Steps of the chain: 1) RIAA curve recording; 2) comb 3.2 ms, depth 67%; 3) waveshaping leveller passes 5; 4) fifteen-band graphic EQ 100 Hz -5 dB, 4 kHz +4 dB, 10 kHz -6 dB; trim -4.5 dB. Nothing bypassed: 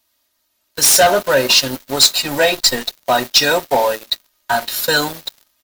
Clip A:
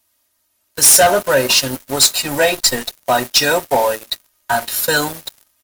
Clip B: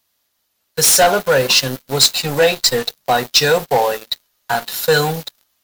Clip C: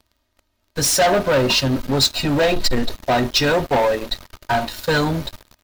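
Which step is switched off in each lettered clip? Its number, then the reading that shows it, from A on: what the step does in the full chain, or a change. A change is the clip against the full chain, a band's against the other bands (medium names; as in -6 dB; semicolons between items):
4, 8 kHz band +2.5 dB; 2, 125 Hz band +7.5 dB; 1, 125 Hz band +12.5 dB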